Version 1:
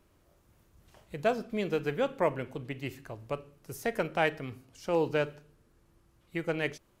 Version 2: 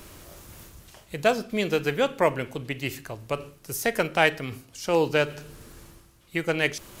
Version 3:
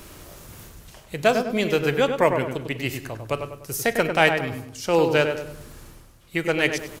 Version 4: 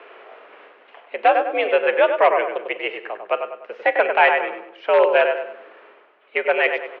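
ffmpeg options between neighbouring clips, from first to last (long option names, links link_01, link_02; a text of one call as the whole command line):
ffmpeg -i in.wav -af "highshelf=frequency=2300:gain=9.5,areverse,acompressor=mode=upward:threshold=-38dB:ratio=2.5,areverse,volume=5dB" out.wav
ffmpeg -i in.wav -filter_complex "[0:a]asplit=2[link_01][link_02];[link_02]adelay=99,lowpass=frequency=2000:poles=1,volume=-6dB,asplit=2[link_03][link_04];[link_04]adelay=99,lowpass=frequency=2000:poles=1,volume=0.44,asplit=2[link_05][link_06];[link_06]adelay=99,lowpass=frequency=2000:poles=1,volume=0.44,asplit=2[link_07][link_08];[link_08]adelay=99,lowpass=frequency=2000:poles=1,volume=0.44,asplit=2[link_09][link_10];[link_10]adelay=99,lowpass=frequency=2000:poles=1,volume=0.44[link_11];[link_01][link_03][link_05][link_07][link_09][link_11]amix=inputs=6:normalize=0,volume=2.5dB" out.wav
ffmpeg -i in.wav -filter_complex "[0:a]asplit=2[link_01][link_02];[link_02]aeval=exprs='(mod(2.82*val(0)+1,2)-1)/2.82':channel_layout=same,volume=-4dB[link_03];[link_01][link_03]amix=inputs=2:normalize=0,highpass=frequency=340:width_type=q:width=0.5412,highpass=frequency=340:width_type=q:width=1.307,lowpass=frequency=2700:width_type=q:width=0.5176,lowpass=frequency=2700:width_type=q:width=0.7071,lowpass=frequency=2700:width_type=q:width=1.932,afreqshift=75,volume=1dB" out.wav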